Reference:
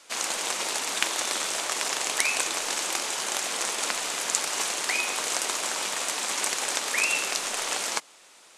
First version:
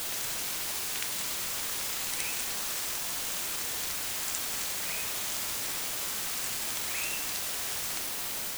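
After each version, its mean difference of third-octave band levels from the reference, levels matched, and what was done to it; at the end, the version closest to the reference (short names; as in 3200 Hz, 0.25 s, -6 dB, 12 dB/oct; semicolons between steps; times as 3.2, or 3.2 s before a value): 7.5 dB: LPF 1900 Hz 6 dB/oct; differentiator; requantised 6-bit, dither triangular; on a send: reverse echo 67 ms -4 dB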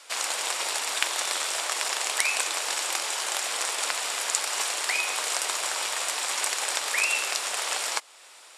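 4.0 dB: HPF 510 Hz 12 dB/oct; notch 6300 Hz, Q 12; in parallel at -2 dB: compressor, threshold -38 dBFS, peak gain reduction 18 dB; on the sum: gain -1 dB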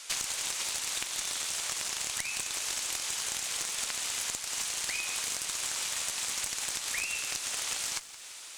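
5.5 dB: tilt shelf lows -8 dB, about 1300 Hz; compressor 12:1, threshold -32 dBFS, peak gain reduction 21 dB; tube stage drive 22 dB, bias 0.5; lo-fi delay 0.171 s, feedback 55%, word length 9-bit, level -15 dB; gain +4 dB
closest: second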